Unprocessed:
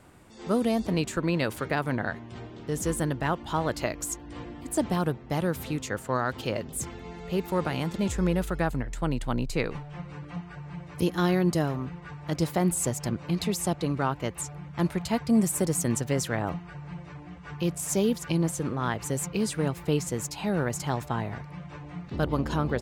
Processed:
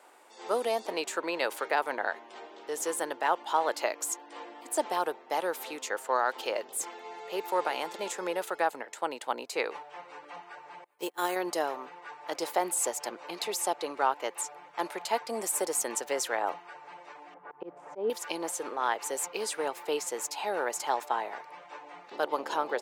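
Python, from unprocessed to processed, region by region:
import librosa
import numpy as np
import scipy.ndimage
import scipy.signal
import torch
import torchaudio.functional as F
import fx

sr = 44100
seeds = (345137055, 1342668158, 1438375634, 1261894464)

y = fx.chain(x, sr, fx.resample_bad(factor=4, down='filtered', up='hold'),
    fx.upward_expand(threshold_db=-39.0, expansion=2.5), at=(10.84, 11.36))
y = fx.chain(y, sr, fx.lowpass(hz=1500.0, slope=12),
    fx.tilt_eq(slope=-3.0),
    fx.auto_swell(attack_ms=155.0), at=(17.34, 18.1))
y = scipy.signal.sosfilt(scipy.signal.butter(4, 420.0, 'highpass', fs=sr, output='sos'), y)
y = fx.peak_eq(y, sr, hz=860.0, db=6.5, octaves=0.3)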